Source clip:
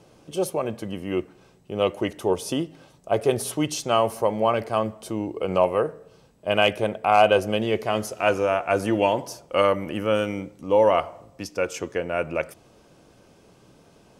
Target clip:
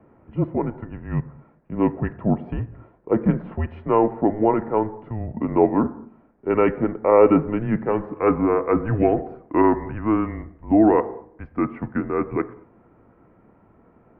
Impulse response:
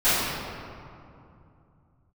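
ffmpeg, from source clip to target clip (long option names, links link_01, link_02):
-filter_complex "[0:a]asplit=2[link_01][link_02];[1:a]atrim=start_sample=2205,afade=type=out:start_time=0.28:duration=0.01,atrim=end_sample=12789,lowpass=1600[link_03];[link_02][link_03]afir=irnorm=-1:irlink=0,volume=-33.5dB[link_04];[link_01][link_04]amix=inputs=2:normalize=0,highpass=frequency=310:width_type=q:width=0.5412,highpass=frequency=310:width_type=q:width=1.307,lowpass=frequency=2000:width_type=q:width=0.5176,lowpass=frequency=2000:width_type=q:width=0.7071,lowpass=frequency=2000:width_type=q:width=1.932,afreqshift=-220,volume=3dB"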